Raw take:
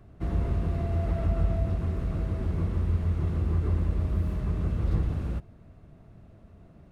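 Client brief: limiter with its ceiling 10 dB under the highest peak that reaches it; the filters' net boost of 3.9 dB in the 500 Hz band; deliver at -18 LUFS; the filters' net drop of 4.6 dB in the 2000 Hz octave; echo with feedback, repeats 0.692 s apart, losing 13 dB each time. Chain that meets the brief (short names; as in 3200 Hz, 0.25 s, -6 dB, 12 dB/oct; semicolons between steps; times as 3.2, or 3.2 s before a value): bell 500 Hz +6 dB; bell 2000 Hz -6.5 dB; limiter -24 dBFS; feedback echo 0.692 s, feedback 22%, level -13 dB; gain +14.5 dB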